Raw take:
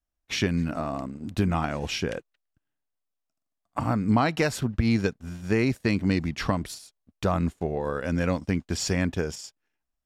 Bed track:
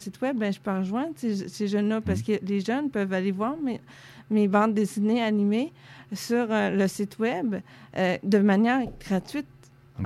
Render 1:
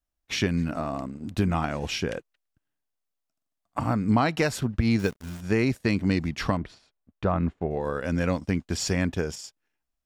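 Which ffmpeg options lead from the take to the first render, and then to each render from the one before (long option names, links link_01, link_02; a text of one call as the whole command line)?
ffmpeg -i in.wav -filter_complex "[0:a]asettb=1/sr,asplit=3[link_01][link_02][link_03];[link_01]atrim=end=4.994[link_04];[link_02]atrim=start=4.99:end=5.41,asetpts=PTS-STARTPTS,afade=type=in:duration=0.004:curve=qsin,afade=type=out:start_time=0.416:duration=0.004:curve=qsin,acrusher=bits=8:dc=4:mix=0:aa=0.000001[link_05];[link_03]atrim=start=5.406[link_06];[link_04][link_05]acrossfade=duration=0.004:curve1=hsin:curve2=qsin[link_07];[link_07][link_06]acrossfade=duration=0.004:curve1=qsin:curve2=hsin,asettb=1/sr,asplit=3[link_08][link_09][link_10];[link_08]atrim=end=6.574[link_11];[link_09]atrim=start=6.57:end=7.71,asetpts=PTS-STARTPTS,afade=type=in:duration=0.004:curve=qsin,afade=type=out:start_time=1.136:duration=0.004:curve=qsin,lowpass=2300[link_12];[link_10]atrim=start=7.706[link_13];[link_11][link_12]acrossfade=duration=0.004:curve1=hsin:curve2=qsin[link_14];[link_14][link_13]acrossfade=duration=0.004:curve1=qsin:curve2=hsin" out.wav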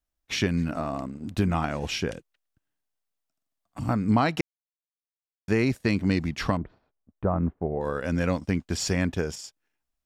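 ffmpeg -i in.wav -filter_complex "[0:a]asettb=1/sr,asplit=3[link_01][link_02][link_03];[link_01]atrim=end=2.114[link_04];[link_02]atrim=start=2.11:end=3.89,asetpts=PTS-STARTPTS,afade=type=in:duration=0.004:curve=qsin,afade=type=out:start_time=1.776:duration=0.004:curve=qsin,acrossover=split=310|3000[link_05][link_06][link_07];[link_06]acompressor=threshold=-43dB:ratio=6:attack=3.2:release=140:knee=2.83:detection=peak[link_08];[link_05][link_08][link_07]amix=inputs=3:normalize=0[link_09];[link_03]atrim=start=3.886[link_10];[link_04][link_09]acrossfade=duration=0.004:curve1=hsin:curve2=qsin[link_11];[link_11][link_10]acrossfade=duration=0.004:curve1=qsin:curve2=hsin,asettb=1/sr,asplit=3[link_12][link_13][link_14];[link_12]atrim=end=6.574[link_15];[link_13]atrim=start=6.57:end=7.81,asetpts=PTS-STARTPTS,afade=type=in:duration=0.004:curve=qsin,afade=type=out:start_time=1.236:duration=0.004:curve=qsin,lowpass=1100[link_16];[link_14]atrim=start=7.806[link_17];[link_15][link_16]acrossfade=duration=0.004:curve1=hsin:curve2=qsin[link_18];[link_18][link_17]acrossfade=duration=0.004:curve1=qsin:curve2=hsin,asplit=3[link_19][link_20][link_21];[link_19]atrim=end=4.41,asetpts=PTS-STARTPTS,afade=type=out:start_time=4.406:duration=0.004:curve=hsin[link_22];[link_20]atrim=start=4.41:end=5.48,asetpts=PTS-STARTPTS,volume=0[link_23];[link_21]atrim=start=5.48,asetpts=PTS-STARTPTS,afade=type=in:duration=0.004:curve=hsin[link_24];[link_22][link_23][link_24]concat=n=3:v=0:a=1" out.wav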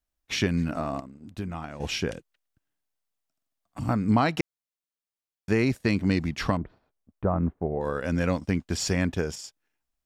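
ffmpeg -i in.wav -filter_complex "[0:a]asplit=3[link_01][link_02][link_03];[link_01]atrim=end=1.002[link_04];[link_02]atrim=start=0.998:end=1.802,asetpts=PTS-STARTPTS,volume=-9.5dB[link_05];[link_03]atrim=start=1.798[link_06];[link_04][link_05]acrossfade=duration=0.004:curve1=hsin:curve2=hsin[link_07];[link_07][link_06]acrossfade=duration=0.004:curve1=hsin:curve2=hsin" out.wav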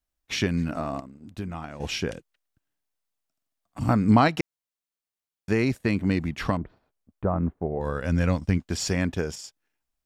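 ffmpeg -i in.wav -filter_complex "[0:a]asettb=1/sr,asplit=3[link_01][link_02][link_03];[link_01]atrim=end=5.784[link_04];[link_02]atrim=start=5.78:end=6.45,asetpts=PTS-STARTPTS,afade=type=in:duration=0.004:curve=qsin,afade=type=out:start_time=0.666:duration=0.004:curve=qsin,equalizer=frequency=5200:width=1.5:gain=-6.5[link_05];[link_03]atrim=start=6.446[link_06];[link_04][link_05]acrossfade=duration=0.004:curve1=hsin:curve2=qsin[link_07];[link_07][link_06]acrossfade=duration=0.004:curve1=qsin:curve2=hsin,asplit=3[link_08][link_09][link_10];[link_08]afade=type=out:start_time=7.79:duration=0.02[link_11];[link_09]asubboost=boost=2:cutoff=180,afade=type=in:start_time=7.79:duration=0.02,afade=type=out:start_time=8.57:duration=0.02[link_12];[link_10]afade=type=in:start_time=8.57:duration=0.02[link_13];[link_11][link_12][link_13]amix=inputs=3:normalize=0,asplit=3[link_14][link_15][link_16];[link_14]atrim=end=3.812[link_17];[link_15]atrim=start=3.808:end=4.282,asetpts=PTS-STARTPTS,volume=4dB[link_18];[link_16]atrim=start=4.278[link_19];[link_17][link_18]acrossfade=duration=0.004:curve1=hsin:curve2=hsin[link_20];[link_20][link_19]acrossfade=duration=0.004:curve1=hsin:curve2=hsin" out.wav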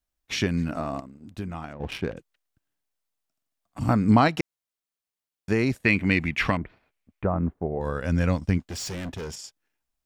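ffmpeg -i in.wav -filter_complex "[0:a]asettb=1/sr,asplit=3[link_01][link_02][link_03];[link_01]atrim=end=1.734[link_04];[link_02]atrim=start=1.73:end=2.17,asetpts=PTS-STARTPTS,afade=type=in:duration=0.004:curve=qsin,afade=type=out:start_time=0.436:duration=0.004:curve=qsin,adynamicsmooth=sensitivity=2.5:basefreq=1100[link_05];[link_03]atrim=start=2.166[link_06];[link_04][link_05]acrossfade=duration=0.004:curve1=hsin:curve2=qsin[link_07];[link_07][link_06]acrossfade=duration=0.004:curve1=qsin:curve2=hsin,asettb=1/sr,asplit=3[link_08][link_09][link_10];[link_08]atrim=end=5.854[link_11];[link_09]atrim=start=5.85:end=7.27,asetpts=PTS-STARTPTS,afade=type=in:duration=0.004:curve=qsin,afade=type=out:start_time=1.416:duration=0.004:curve=qsin,equalizer=frequency=2300:width=1.5:gain=13.5[link_12];[link_10]atrim=start=7.266[link_13];[link_11][link_12]acrossfade=duration=0.004:curve1=hsin:curve2=qsin[link_14];[link_14][link_13]acrossfade=duration=0.004:curve1=qsin:curve2=hsin,asettb=1/sr,asplit=3[link_15][link_16][link_17];[link_15]atrim=end=8.594[link_18];[link_16]atrim=start=8.59:end=9.39,asetpts=PTS-STARTPTS,afade=type=in:duration=0.004:curve=qsin,afade=type=out:start_time=0.796:duration=0.004:curve=qsin,asoftclip=type=hard:threshold=-31dB[link_19];[link_17]atrim=start=9.386[link_20];[link_18][link_19]acrossfade=duration=0.004:curve1=hsin:curve2=qsin[link_21];[link_21][link_20]acrossfade=duration=0.004:curve1=qsin:curve2=hsin" out.wav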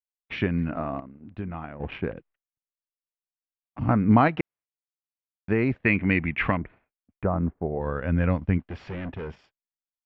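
ffmpeg -i in.wav -af "lowpass=frequency=2600:width=0.5412,lowpass=frequency=2600:width=1.3066,agate=range=-33dB:threshold=-50dB:ratio=3:detection=peak" out.wav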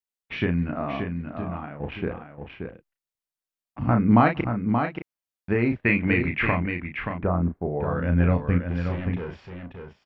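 ffmpeg -i in.wav -filter_complex "[0:a]asplit=2[link_01][link_02];[link_02]adelay=34,volume=-6dB[link_03];[link_01][link_03]amix=inputs=2:normalize=0,asplit=2[link_04][link_05];[link_05]aecho=0:1:578:0.473[link_06];[link_04][link_06]amix=inputs=2:normalize=0" out.wav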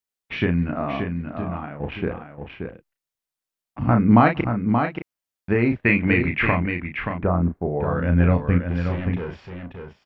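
ffmpeg -i in.wav -af "volume=3dB,alimiter=limit=-3dB:level=0:latency=1" out.wav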